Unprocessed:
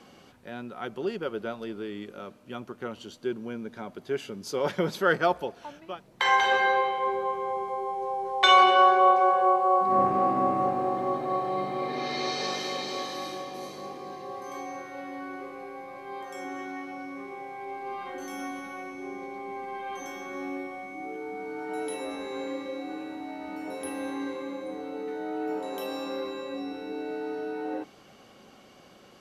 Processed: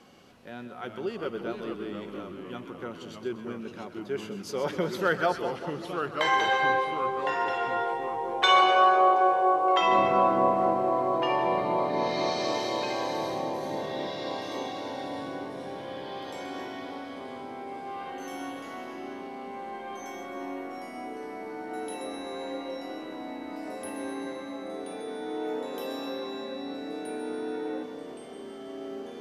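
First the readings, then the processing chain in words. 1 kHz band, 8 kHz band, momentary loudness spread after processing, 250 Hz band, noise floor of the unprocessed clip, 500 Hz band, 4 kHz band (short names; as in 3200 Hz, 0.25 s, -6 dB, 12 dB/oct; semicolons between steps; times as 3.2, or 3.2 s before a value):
-1.0 dB, -1.5 dB, 17 LU, 0.0 dB, -54 dBFS, +0.5 dB, -1.0 dB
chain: split-band echo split 1200 Hz, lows 0.193 s, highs 0.128 s, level -10 dB; echoes that change speed 0.3 s, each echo -2 st, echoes 3, each echo -6 dB; gain -2.5 dB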